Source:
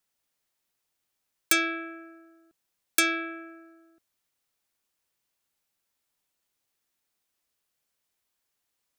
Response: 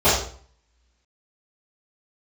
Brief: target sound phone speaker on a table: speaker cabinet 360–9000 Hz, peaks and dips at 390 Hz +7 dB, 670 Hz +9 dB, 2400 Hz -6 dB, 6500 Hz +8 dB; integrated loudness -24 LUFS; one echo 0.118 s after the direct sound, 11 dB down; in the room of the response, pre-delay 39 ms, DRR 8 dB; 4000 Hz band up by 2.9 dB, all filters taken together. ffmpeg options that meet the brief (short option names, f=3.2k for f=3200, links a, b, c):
-filter_complex "[0:a]equalizer=f=4k:t=o:g=3.5,aecho=1:1:118:0.282,asplit=2[a][b];[1:a]atrim=start_sample=2205,adelay=39[c];[b][c]afir=irnorm=-1:irlink=0,volume=-30.5dB[d];[a][d]amix=inputs=2:normalize=0,highpass=f=360:w=0.5412,highpass=f=360:w=1.3066,equalizer=f=390:t=q:w=4:g=7,equalizer=f=670:t=q:w=4:g=9,equalizer=f=2.4k:t=q:w=4:g=-6,equalizer=f=6.5k:t=q:w=4:g=8,lowpass=f=9k:w=0.5412,lowpass=f=9k:w=1.3066,volume=1.5dB"